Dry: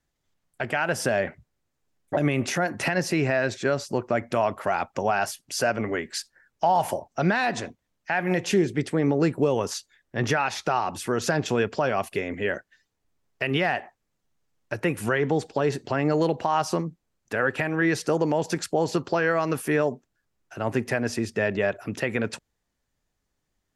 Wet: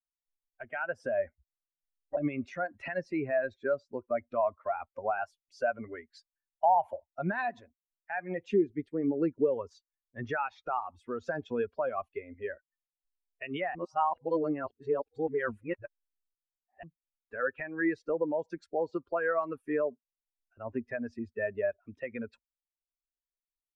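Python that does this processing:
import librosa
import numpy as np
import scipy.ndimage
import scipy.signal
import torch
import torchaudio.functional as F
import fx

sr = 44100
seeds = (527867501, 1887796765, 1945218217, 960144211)

y = fx.edit(x, sr, fx.reverse_span(start_s=13.75, length_s=3.08), tone=tone)
y = fx.bin_expand(y, sr, power=2.0)
y = scipy.signal.sosfilt(scipy.signal.butter(2, 1500.0, 'lowpass', fs=sr, output='sos'), y)
y = fx.peak_eq(y, sr, hz=130.0, db=-12.0, octaves=1.2)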